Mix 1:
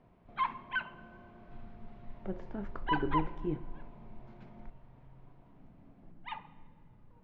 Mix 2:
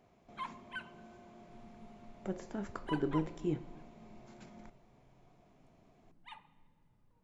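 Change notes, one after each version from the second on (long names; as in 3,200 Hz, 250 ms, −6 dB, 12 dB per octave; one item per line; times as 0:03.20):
background −12.0 dB
master: remove high-frequency loss of the air 320 metres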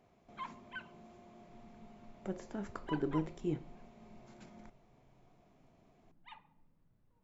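background: add high-frequency loss of the air 89 metres
reverb: off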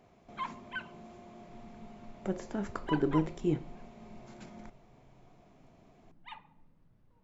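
speech +6.0 dB
background +6.5 dB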